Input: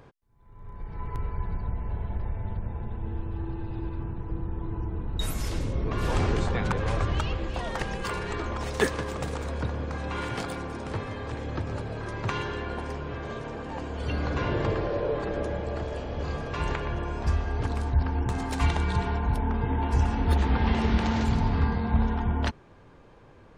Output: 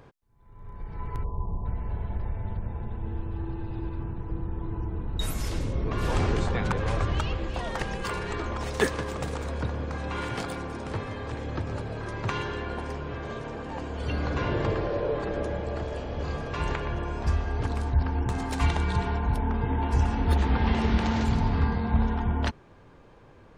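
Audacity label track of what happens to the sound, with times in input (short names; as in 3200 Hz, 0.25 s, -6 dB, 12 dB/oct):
1.240000	1.650000	spectral delete 1200–5200 Hz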